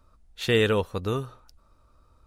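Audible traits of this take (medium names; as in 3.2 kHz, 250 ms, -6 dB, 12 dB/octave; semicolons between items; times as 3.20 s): noise floor -62 dBFS; spectral tilt -4.0 dB/octave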